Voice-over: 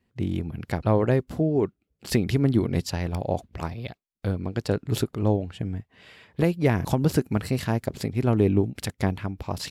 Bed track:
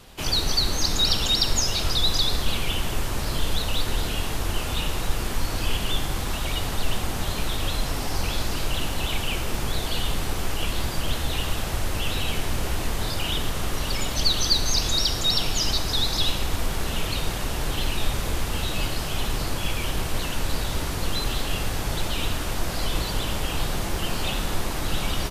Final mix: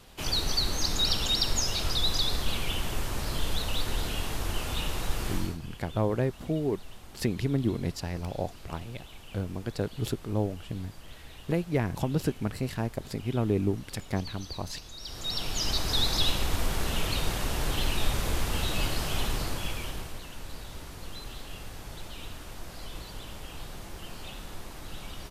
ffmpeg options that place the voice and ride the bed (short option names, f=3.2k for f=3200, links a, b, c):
-filter_complex "[0:a]adelay=5100,volume=-6dB[a];[1:a]volume=14dB,afade=t=out:st=5.33:d=0.25:silence=0.149624,afade=t=in:st=14.99:d=0.98:silence=0.112202,afade=t=out:st=19.16:d=1.04:silence=0.237137[b];[a][b]amix=inputs=2:normalize=0"